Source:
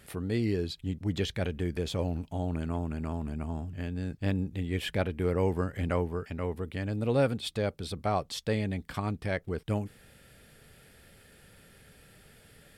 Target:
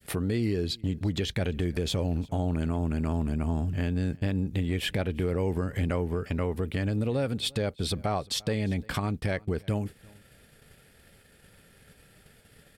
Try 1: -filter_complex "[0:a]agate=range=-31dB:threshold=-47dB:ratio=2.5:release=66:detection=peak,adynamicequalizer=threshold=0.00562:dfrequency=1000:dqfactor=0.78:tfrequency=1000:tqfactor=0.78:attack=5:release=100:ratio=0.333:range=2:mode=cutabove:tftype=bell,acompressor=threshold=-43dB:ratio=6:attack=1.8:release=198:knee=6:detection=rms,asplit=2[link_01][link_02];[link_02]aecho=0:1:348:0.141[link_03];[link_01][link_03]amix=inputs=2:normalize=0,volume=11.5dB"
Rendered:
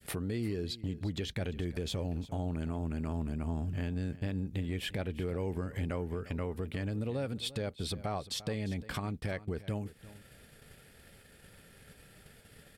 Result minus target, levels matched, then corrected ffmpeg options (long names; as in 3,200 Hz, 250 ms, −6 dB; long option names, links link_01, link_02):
downward compressor: peak gain reduction +7 dB; echo-to-direct +8 dB
-filter_complex "[0:a]agate=range=-31dB:threshold=-47dB:ratio=2.5:release=66:detection=peak,adynamicequalizer=threshold=0.00562:dfrequency=1000:dqfactor=0.78:tfrequency=1000:tqfactor=0.78:attack=5:release=100:ratio=0.333:range=2:mode=cutabove:tftype=bell,acompressor=threshold=-34.5dB:ratio=6:attack=1.8:release=198:knee=6:detection=rms,asplit=2[link_01][link_02];[link_02]aecho=0:1:348:0.0562[link_03];[link_01][link_03]amix=inputs=2:normalize=0,volume=11.5dB"